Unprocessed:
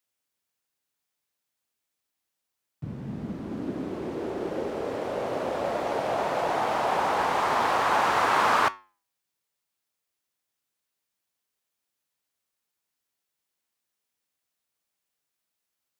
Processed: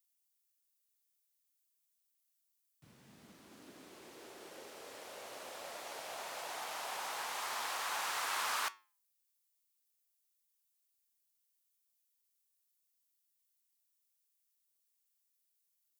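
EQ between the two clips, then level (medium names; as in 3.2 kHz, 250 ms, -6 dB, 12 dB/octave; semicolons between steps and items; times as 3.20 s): pre-emphasis filter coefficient 0.97; 0.0 dB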